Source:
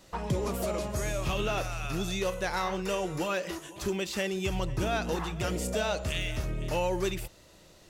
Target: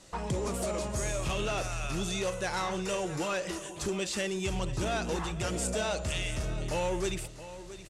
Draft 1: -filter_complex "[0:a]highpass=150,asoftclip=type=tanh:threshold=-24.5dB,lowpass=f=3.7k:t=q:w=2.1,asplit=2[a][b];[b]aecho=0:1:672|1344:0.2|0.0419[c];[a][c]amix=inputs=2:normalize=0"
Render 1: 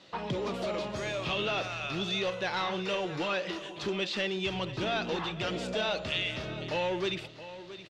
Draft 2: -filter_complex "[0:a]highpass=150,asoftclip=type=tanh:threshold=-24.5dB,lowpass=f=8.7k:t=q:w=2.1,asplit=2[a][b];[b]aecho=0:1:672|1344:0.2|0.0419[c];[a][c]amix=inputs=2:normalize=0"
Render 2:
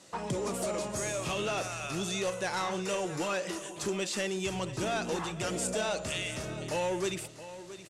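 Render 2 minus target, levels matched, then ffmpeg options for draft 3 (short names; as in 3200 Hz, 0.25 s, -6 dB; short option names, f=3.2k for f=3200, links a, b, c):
125 Hz band -4.0 dB
-filter_complex "[0:a]asoftclip=type=tanh:threshold=-24.5dB,lowpass=f=8.7k:t=q:w=2.1,asplit=2[a][b];[b]aecho=0:1:672|1344:0.2|0.0419[c];[a][c]amix=inputs=2:normalize=0"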